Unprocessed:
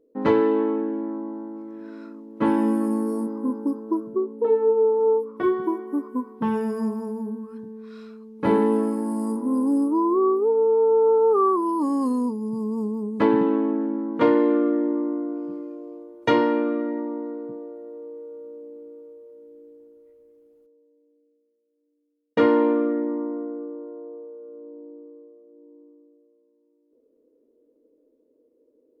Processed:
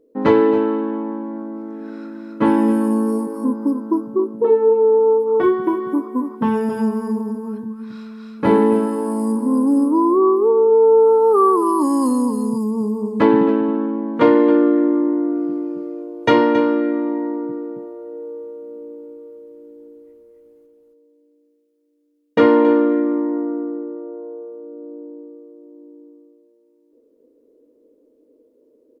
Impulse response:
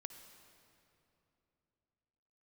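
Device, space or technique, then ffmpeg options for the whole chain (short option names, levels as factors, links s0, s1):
ducked delay: -filter_complex "[0:a]asettb=1/sr,asplit=3[s0][s1][s2];[s0]atrim=end=10.754[s3];[s1]atrim=start=10.75:end=12.71,asetpts=PTS-STARTPTS,afade=t=in:d=0.004:c=qsin,afade=t=out:st=1.956:d=0.004:c=qsin,highshelf=f=5500:g=12[s4];[s2]atrim=start=12.706[s5];[s3][s4]acrossfade=d=0.004:c1=hsin:c2=qsin[s6];[s6][s5]acrossfade=d=0.004:c1=qsin:c2=hsin,asplit=3[s7][s8][s9];[s8]adelay=272,volume=0.75[s10];[s9]apad=whole_len=1290897[s11];[s10][s11]sidechaincompress=threshold=0.0316:ratio=5:attack=16:release=161[s12];[s7][s12]amix=inputs=2:normalize=0,volume=1.88"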